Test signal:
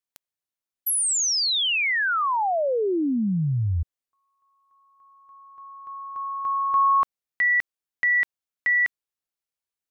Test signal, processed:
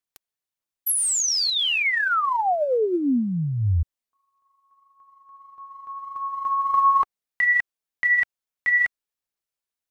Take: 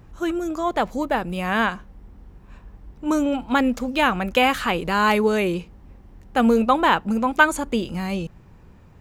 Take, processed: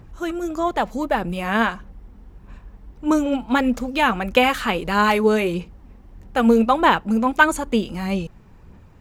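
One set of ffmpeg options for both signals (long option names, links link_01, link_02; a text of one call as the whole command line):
ffmpeg -i in.wav -af "aphaser=in_gain=1:out_gain=1:delay=4.7:decay=0.34:speed=1.6:type=sinusoidal" out.wav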